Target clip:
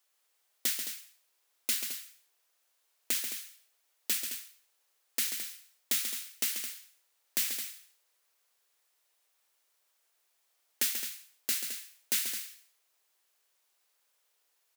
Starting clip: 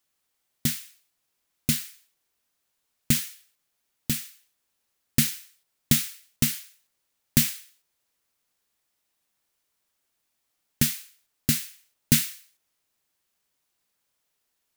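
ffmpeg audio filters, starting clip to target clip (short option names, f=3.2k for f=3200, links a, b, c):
-af "alimiter=limit=-13.5dB:level=0:latency=1:release=425,highpass=f=400:w=0.5412,highpass=f=400:w=1.3066,aecho=1:1:137|215.7:0.398|0.316,volume=1.5dB"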